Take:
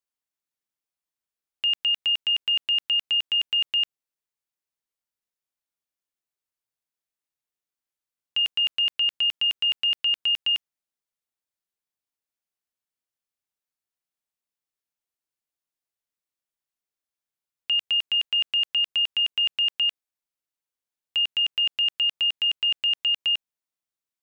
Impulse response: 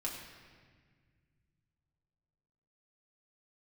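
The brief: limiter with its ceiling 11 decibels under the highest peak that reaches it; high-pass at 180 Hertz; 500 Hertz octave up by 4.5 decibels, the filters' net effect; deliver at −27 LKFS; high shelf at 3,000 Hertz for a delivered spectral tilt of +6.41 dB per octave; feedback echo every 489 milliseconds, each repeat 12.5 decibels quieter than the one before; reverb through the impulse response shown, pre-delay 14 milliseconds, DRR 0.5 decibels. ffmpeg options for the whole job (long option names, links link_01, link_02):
-filter_complex "[0:a]highpass=180,equalizer=frequency=500:width_type=o:gain=6,highshelf=frequency=3000:gain=-8.5,alimiter=level_in=8.5dB:limit=-24dB:level=0:latency=1,volume=-8.5dB,aecho=1:1:489|978|1467:0.237|0.0569|0.0137,asplit=2[link_01][link_02];[1:a]atrim=start_sample=2205,adelay=14[link_03];[link_02][link_03]afir=irnorm=-1:irlink=0,volume=-2dB[link_04];[link_01][link_04]amix=inputs=2:normalize=0,volume=8dB"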